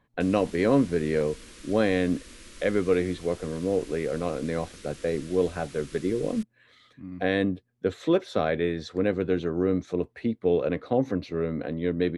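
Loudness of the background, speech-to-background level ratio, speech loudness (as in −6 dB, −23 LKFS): −47.0 LKFS, 19.5 dB, −27.5 LKFS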